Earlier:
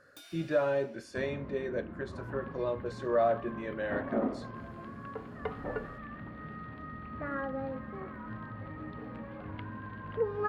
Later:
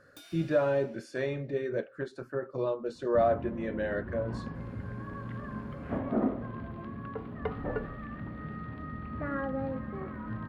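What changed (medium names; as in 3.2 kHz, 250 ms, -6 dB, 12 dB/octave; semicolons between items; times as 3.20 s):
second sound: entry +2.00 s; master: add bass shelf 350 Hz +6.5 dB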